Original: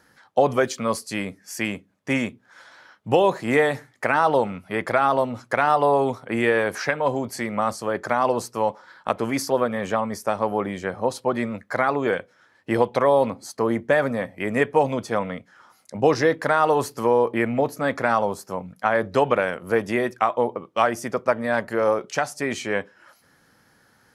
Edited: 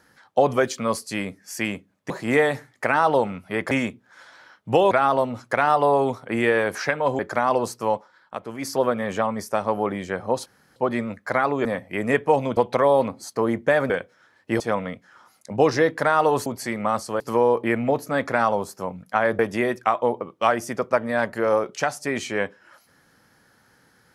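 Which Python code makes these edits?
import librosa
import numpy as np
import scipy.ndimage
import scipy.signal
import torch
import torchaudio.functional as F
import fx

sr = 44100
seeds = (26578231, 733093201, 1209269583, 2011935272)

y = fx.edit(x, sr, fx.move(start_s=2.1, length_s=1.2, to_s=4.91),
    fx.move(start_s=7.19, length_s=0.74, to_s=16.9),
    fx.fade_down_up(start_s=8.66, length_s=0.84, db=-9.0, fade_s=0.18),
    fx.insert_room_tone(at_s=11.2, length_s=0.3),
    fx.swap(start_s=12.09, length_s=0.7, other_s=14.12, other_length_s=0.92),
    fx.cut(start_s=19.09, length_s=0.65), tone=tone)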